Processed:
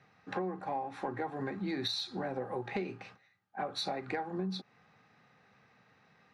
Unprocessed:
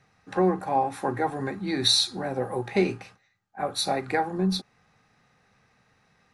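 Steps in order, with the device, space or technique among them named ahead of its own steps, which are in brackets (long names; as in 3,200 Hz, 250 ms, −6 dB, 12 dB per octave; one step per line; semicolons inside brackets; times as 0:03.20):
AM radio (band-pass filter 120–4,100 Hz; downward compressor 10 to 1, threshold −32 dBFS, peak gain reduction 15 dB; soft clipping −22 dBFS, distortion −26 dB)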